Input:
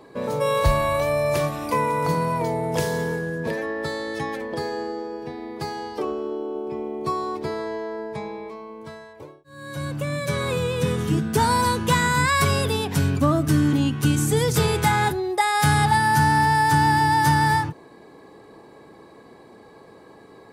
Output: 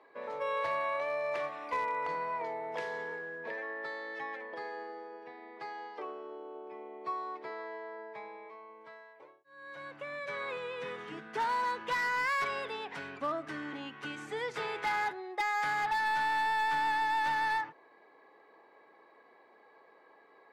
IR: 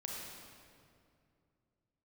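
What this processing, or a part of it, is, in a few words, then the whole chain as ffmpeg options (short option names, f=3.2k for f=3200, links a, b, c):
megaphone: -af "highpass=600,lowpass=2.6k,equalizer=f=2k:t=o:w=0.43:g=5.5,asoftclip=type=hard:threshold=-18dB,volume=-9dB"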